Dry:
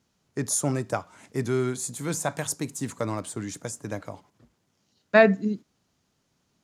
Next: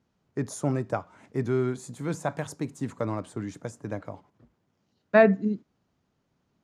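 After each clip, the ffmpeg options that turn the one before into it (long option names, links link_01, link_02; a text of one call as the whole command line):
ffmpeg -i in.wav -af "lowpass=frequency=1500:poles=1" out.wav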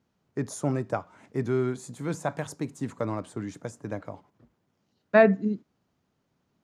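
ffmpeg -i in.wav -af "lowshelf=frequency=62:gain=-5.5" out.wav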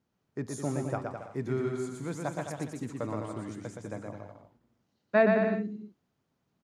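ffmpeg -i in.wav -af "aecho=1:1:120|210|277.5|328.1|366.1:0.631|0.398|0.251|0.158|0.1,volume=-5.5dB" out.wav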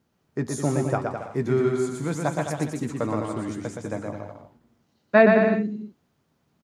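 ffmpeg -i in.wav -filter_complex "[0:a]asplit=2[link_01][link_02];[link_02]adelay=13,volume=-11.5dB[link_03];[link_01][link_03]amix=inputs=2:normalize=0,volume=8dB" out.wav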